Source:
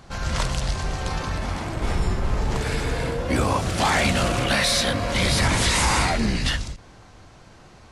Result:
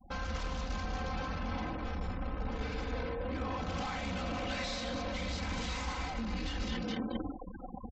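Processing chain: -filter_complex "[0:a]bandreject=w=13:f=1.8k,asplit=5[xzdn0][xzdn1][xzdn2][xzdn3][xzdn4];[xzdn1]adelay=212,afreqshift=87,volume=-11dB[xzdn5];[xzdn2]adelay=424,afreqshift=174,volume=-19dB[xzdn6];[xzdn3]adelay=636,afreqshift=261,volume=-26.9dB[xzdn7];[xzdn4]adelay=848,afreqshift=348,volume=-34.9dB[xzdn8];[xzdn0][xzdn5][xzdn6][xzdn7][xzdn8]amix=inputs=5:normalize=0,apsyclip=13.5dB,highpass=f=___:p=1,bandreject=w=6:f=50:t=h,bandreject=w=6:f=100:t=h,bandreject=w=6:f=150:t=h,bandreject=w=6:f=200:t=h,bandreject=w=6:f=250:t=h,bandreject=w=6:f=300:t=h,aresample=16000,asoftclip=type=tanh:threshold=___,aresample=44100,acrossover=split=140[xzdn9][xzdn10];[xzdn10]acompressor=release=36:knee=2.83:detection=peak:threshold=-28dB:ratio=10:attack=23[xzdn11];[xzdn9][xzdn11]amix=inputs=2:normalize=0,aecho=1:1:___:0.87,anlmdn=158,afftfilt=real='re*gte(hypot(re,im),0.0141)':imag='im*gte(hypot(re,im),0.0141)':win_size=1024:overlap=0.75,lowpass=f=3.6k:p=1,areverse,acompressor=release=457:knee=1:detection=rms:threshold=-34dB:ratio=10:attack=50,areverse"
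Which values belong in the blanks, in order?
78, -15.5dB, 3.9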